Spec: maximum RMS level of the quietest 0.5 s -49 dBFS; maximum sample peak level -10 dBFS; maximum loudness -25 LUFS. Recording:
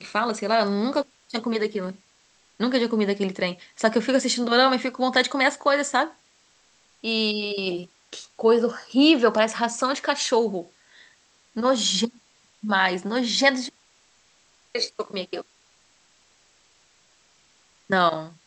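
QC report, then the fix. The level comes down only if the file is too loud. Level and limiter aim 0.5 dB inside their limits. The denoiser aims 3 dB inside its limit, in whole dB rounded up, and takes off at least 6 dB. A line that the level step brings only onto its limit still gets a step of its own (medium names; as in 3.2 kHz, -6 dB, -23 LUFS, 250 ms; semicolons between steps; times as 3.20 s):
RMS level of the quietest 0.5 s -61 dBFS: pass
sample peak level -4.0 dBFS: fail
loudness -23.0 LUFS: fail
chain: trim -2.5 dB; peak limiter -10.5 dBFS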